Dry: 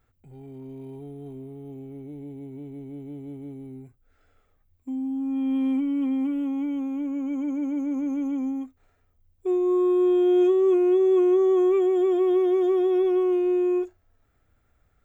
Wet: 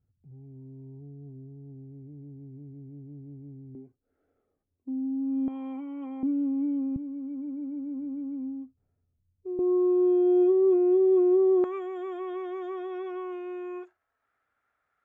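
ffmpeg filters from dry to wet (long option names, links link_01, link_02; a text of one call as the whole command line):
ffmpeg -i in.wav -af "asetnsamples=nb_out_samples=441:pad=0,asendcmd='3.75 bandpass f 340;5.48 bandpass f 860;6.23 bandpass f 310;6.96 bandpass f 140;9.59 bandpass f 480;11.64 bandpass f 1400',bandpass=frequency=120:width_type=q:width=1.4:csg=0" out.wav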